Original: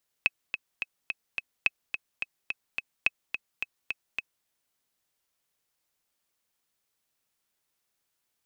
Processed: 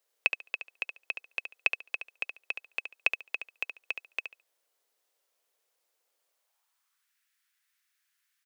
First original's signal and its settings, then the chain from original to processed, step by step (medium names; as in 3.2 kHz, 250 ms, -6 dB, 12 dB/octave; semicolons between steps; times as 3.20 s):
metronome 214 bpm, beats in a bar 5, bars 3, 2.57 kHz, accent 8.5 dB -8.5 dBFS
on a send: feedback delay 71 ms, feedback 18%, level -8 dB; on the sum: high-pass sweep 480 Hz -> 1.7 kHz, 6.22–7.15 s